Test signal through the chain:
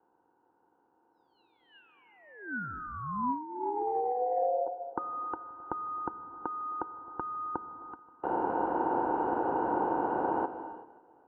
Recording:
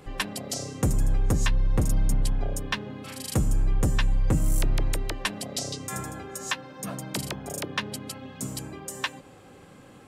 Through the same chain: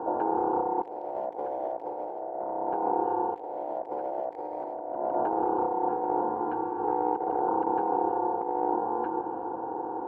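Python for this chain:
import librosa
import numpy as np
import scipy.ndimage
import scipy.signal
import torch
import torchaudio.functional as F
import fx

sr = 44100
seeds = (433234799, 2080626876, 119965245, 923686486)

y = fx.bin_compress(x, sr, power=0.6)
y = fx.formant_cascade(y, sr, vowel='u')
y = fx.peak_eq(y, sr, hz=120.0, db=11.5, octaves=1.9)
y = fx.echo_feedback(y, sr, ms=265, feedback_pct=55, wet_db=-22.5)
y = y * np.sin(2.0 * np.pi * 620.0 * np.arange(len(y)) / sr)
y = np.clip(y, -10.0 ** (-18.0 / 20.0), 10.0 ** (-18.0 / 20.0))
y = scipy.signal.sosfilt(scipy.signal.butter(2, 55.0, 'highpass', fs=sr, output='sos'), y)
y = fx.rev_gated(y, sr, seeds[0], gate_ms=410, shape='flat', drr_db=9.5)
y = fx.over_compress(y, sr, threshold_db=-35.0, ratio=-0.5)
y = fx.low_shelf(y, sr, hz=390.0, db=-5.5)
y = y * 10.0 ** (8.0 / 20.0)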